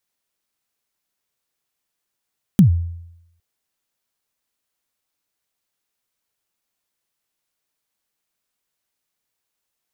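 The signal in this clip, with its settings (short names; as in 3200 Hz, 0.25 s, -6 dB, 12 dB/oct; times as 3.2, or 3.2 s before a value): kick drum length 0.81 s, from 220 Hz, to 85 Hz, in 0.109 s, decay 0.83 s, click on, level -4.5 dB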